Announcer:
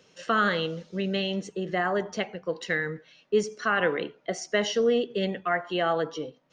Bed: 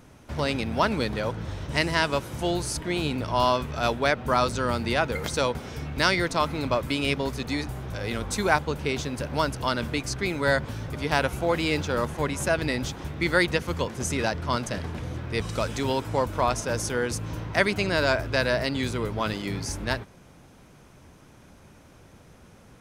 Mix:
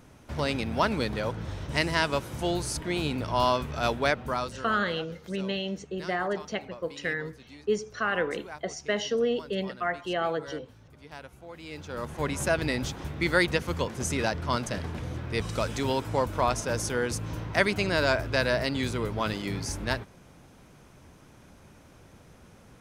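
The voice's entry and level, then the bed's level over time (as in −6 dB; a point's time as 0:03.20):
4.35 s, −3.0 dB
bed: 0:04.11 −2 dB
0:04.96 −20.5 dB
0:11.52 −20.5 dB
0:12.29 −1.5 dB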